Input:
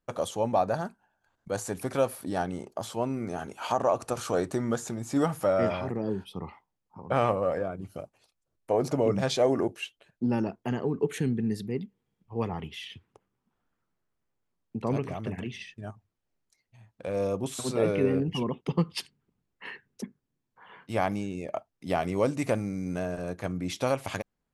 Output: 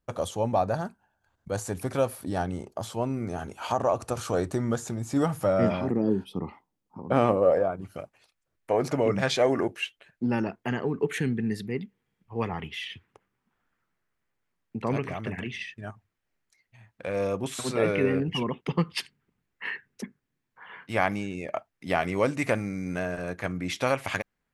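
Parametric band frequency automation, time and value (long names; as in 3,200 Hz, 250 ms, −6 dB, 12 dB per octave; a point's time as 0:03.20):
parametric band +9 dB 1.3 octaves
0:05.28 77 Hz
0:05.85 270 Hz
0:07.30 270 Hz
0:07.96 1,900 Hz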